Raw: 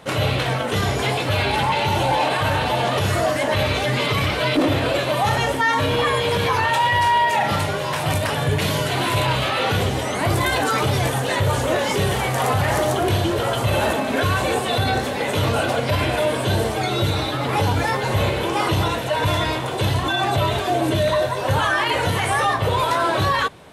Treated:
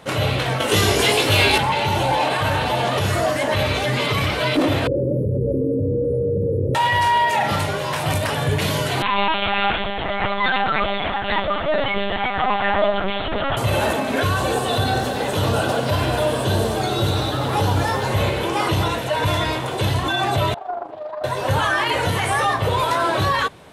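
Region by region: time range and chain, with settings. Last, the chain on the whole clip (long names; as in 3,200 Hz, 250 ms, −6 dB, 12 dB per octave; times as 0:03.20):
0:00.60–0:01.58: high-shelf EQ 2,900 Hz +10.5 dB + double-tracking delay 19 ms −5 dB + hollow resonant body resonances 380/2,800 Hz, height 7 dB, ringing for 20 ms
0:04.87–0:06.75: linear-phase brick-wall band-stop 580–9,600 Hz + high-frequency loss of the air 180 metres + envelope flattener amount 100%
0:09.02–0:13.57: high-pass filter 480 Hz + comb filter 5 ms, depth 87% + linear-prediction vocoder at 8 kHz pitch kept
0:14.29–0:18.07: parametric band 2,200 Hz −8 dB 0.42 octaves + feedback echo at a low word length 94 ms, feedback 80%, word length 8 bits, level −11.5 dB
0:20.54–0:21.24: resonant band-pass 770 Hz, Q 4.9 + amplitude modulation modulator 25 Hz, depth 35% + highs frequency-modulated by the lows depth 0.24 ms
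whole clip: no processing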